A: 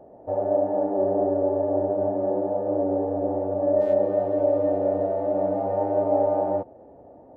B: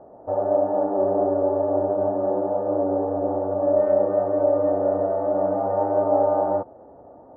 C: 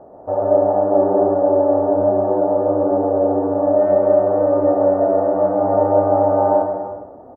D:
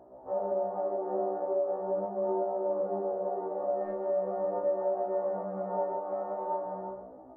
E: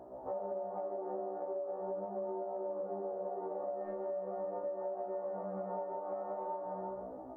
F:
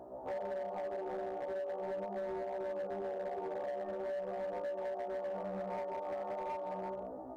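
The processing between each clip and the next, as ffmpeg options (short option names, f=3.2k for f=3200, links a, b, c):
-af "lowpass=f=1.3k:t=q:w=3.1"
-af "aecho=1:1:140|252|341.6|413.3|470.6:0.631|0.398|0.251|0.158|0.1,volume=4dB"
-af "flanger=delay=18.5:depth=5.3:speed=0.4,acompressor=threshold=-19dB:ratio=12,afftfilt=real='re*1.73*eq(mod(b,3),0)':imag='im*1.73*eq(mod(b,3),0)':win_size=2048:overlap=0.75,volume=-5dB"
-af "acompressor=threshold=-40dB:ratio=6,volume=3dB"
-af "asoftclip=type=hard:threshold=-36dB,volume=1dB"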